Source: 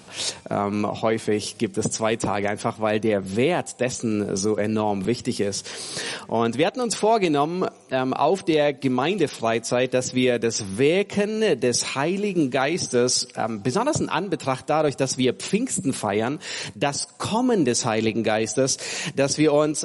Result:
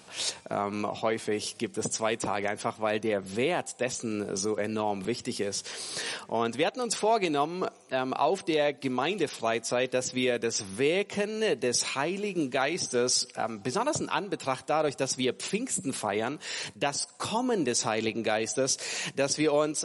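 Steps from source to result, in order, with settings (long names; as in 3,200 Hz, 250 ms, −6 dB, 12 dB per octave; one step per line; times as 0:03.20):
low-shelf EQ 320 Hz −8 dB
level −4 dB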